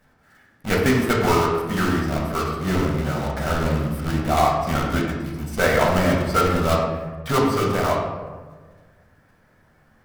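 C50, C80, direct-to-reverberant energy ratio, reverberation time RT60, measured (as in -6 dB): 2.5 dB, 4.5 dB, -3.0 dB, 1.4 s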